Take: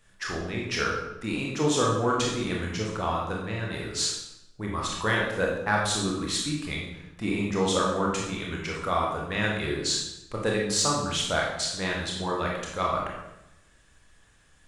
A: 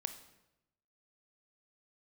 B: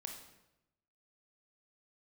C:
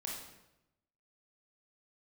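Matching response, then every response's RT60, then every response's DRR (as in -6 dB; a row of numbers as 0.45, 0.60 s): C; 0.90, 0.90, 0.90 s; 9.0, 2.5, -2.5 dB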